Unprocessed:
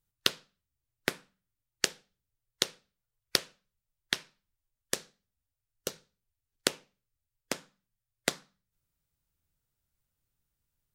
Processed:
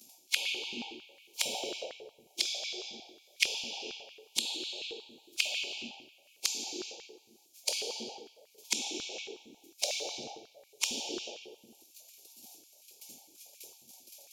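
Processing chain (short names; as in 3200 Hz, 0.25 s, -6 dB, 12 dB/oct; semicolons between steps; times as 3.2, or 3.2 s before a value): cycle switcher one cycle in 3, inverted; wide varispeed 0.764×; upward compressor, threshold -39 dBFS; high shelf 5400 Hz -5 dB; gate -56 dBFS, range -23 dB; brick-wall FIR band-stop 930–2200 Hz; tilt +4.5 dB/oct; reverb RT60 1.1 s, pre-delay 3 ms, DRR -4.5 dB; compressor 16:1, threshold -37 dBFS, peak gain reduction 30 dB; stepped high-pass 11 Hz 230–2000 Hz; gain +6.5 dB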